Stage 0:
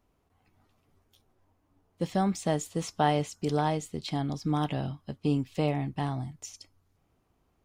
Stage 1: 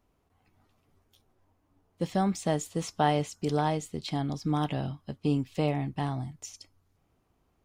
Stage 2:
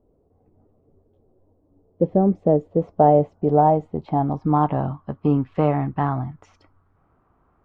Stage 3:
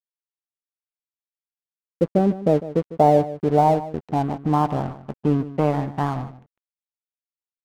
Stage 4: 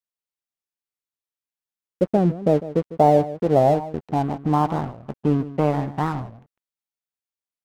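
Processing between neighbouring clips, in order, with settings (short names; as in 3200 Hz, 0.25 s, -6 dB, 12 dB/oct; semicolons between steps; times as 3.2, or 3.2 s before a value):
nothing audible
low-pass sweep 490 Hz -> 1300 Hz, 2.4–5.45; gain +7.5 dB
crossover distortion -34 dBFS; outdoor echo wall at 26 m, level -15 dB
record warp 45 rpm, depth 250 cents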